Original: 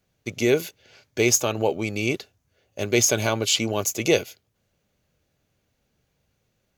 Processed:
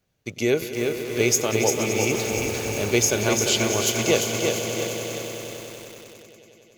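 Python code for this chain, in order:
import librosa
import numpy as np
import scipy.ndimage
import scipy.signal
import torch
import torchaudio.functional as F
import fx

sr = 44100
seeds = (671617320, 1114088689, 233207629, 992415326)

y = fx.zero_step(x, sr, step_db=-29.0, at=(2.13, 2.98))
y = fx.echo_swell(y, sr, ms=95, loudest=5, wet_db=-13.5)
y = fx.echo_crushed(y, sr, ms=346, feedback_pct=55, bits=6, wet_db=-4.0)
y = y * 10.0 ** (-1.5 / 20.0)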